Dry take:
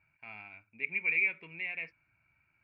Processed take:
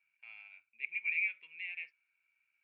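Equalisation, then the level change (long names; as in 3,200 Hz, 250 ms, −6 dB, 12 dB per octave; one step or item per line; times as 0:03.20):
resonant band-pass 3,100 Hz, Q 2.3
0.0 dB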